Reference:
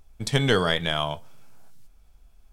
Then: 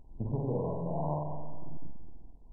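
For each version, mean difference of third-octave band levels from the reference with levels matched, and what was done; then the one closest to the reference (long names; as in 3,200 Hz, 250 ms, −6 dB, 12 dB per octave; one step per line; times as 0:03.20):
17.5 dB: high-shelf EQ 2,600 Hz −6.5 dB
downward compressor 8 to 1, threshold −31 dBFS, peak gain reduction 14.5 dB
on a send: flutter between parallel walls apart 8 metres, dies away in 1.4 s
on the sum: MP2 8 kbit/s 22,050 Hz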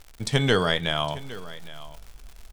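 2.5 dB: low-pass filter 11,000 Hz
reversed playback
upward compression, threshold −33 dBFS
reversed playback
surface crackle 170 per second −36 dBFS
single-tap delay 811 ms −17.5 dB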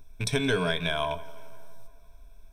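4.5 dB: loose part that buzzes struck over −31 dBFS, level −25 dBFS
EQ curve with evenly spaced ripples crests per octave 1.6, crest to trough 13 dB
downward compressor 2.5 to 1, threshold −26 dBFS, peak gain reduction 9 dB
tape delay 170 ms, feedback 67%, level −18 dB, low-pass 2,900 Hz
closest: second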